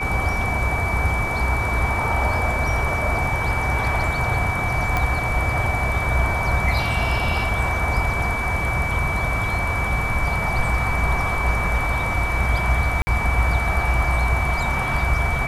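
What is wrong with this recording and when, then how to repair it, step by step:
tone 2300 Hz -25 dBFS
4.97 pop -9 dBFS
13.02–13.07 gap 50 ms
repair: de-click; notch 2300 Hz, Q 30; interpolate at 13.02, 50 ms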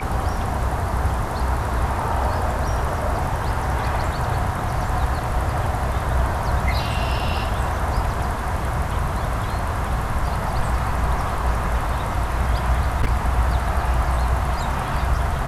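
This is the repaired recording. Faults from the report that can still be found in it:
none

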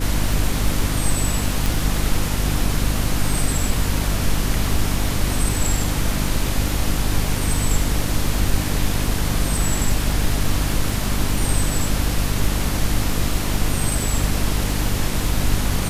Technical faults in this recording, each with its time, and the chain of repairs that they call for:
crackle 24/s -25 dBFS
hum 50 Hz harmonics 6 -24 dBFS
1.66 pop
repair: de-click; de-hum 50 Hz, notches 6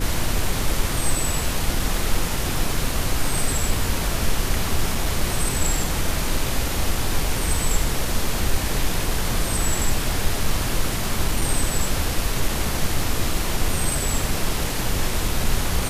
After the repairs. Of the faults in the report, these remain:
none

